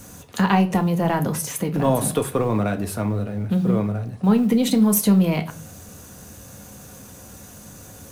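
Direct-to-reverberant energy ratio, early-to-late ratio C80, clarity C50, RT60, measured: 6.0 dB, 22.0 dB, 17.0 dB, 0.45 s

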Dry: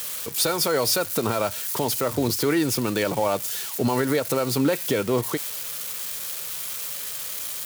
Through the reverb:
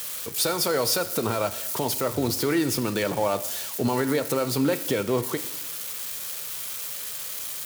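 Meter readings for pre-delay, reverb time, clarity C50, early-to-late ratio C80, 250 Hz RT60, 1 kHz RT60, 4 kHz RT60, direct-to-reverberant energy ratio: 5 ms, 1.1 s, 14.5 dB, 16.0 dB, 1.1 s, 1.1 s, 1.0 s, 12.0 dB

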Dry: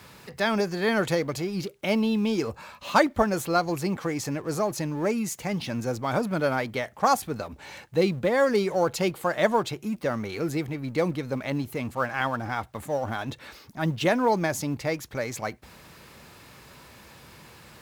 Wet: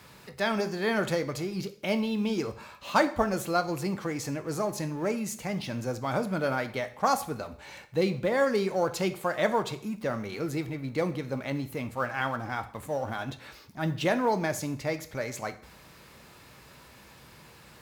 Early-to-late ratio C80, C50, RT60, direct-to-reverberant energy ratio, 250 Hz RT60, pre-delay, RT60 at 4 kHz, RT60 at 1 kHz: 18.0 dB, 14.5 dB, 0.55 s, 9.0 dB, 0.55 s, 6 ms, 0.50 s, 0.55 s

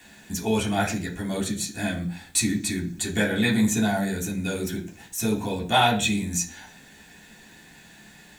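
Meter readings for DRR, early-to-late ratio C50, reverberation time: −4.0 dB, 12.0 dB, 0.45 s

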